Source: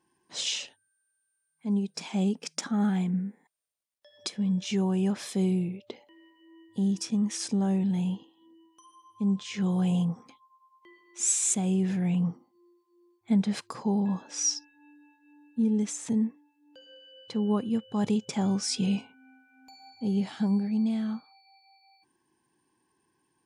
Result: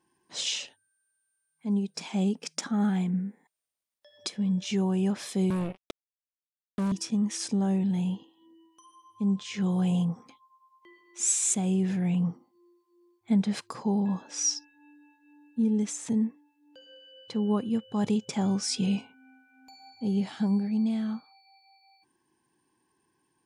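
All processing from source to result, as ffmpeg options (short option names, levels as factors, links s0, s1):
-filter_complex "[0:a]asettb=1/sr,asplit=3[s0][s1][s2];[s0]atrim=end=5.504[s3];[s1]atrim=start=5.5:end=6.92,asetpts=PTS-STARTPTS,afade=t=in:d=0.004:c=qsin,afade=t=out:st=1.416:d=0.004:c=qsin,lowshelf=f=63:g=3,acrossover=split=130|3000[s4][s5][s6];[s5]acompressor=threshold=0.0316:ratio=2.5:attack=3.2:release=140:knee=2.83:detection=peak[s7];[s4][s7][s6]amix=inputs=3:normalize=0,acrusher=bits=4:mix=0:aa=0.5[s8];[s2]atrim=start=6.916[s9];[s3][s8]acrossfade=d=0.004:c1=hsin:c2=qsin[s10];[s10][s9]acrossfade=d=0.004:c1=qsin:c2=hsin"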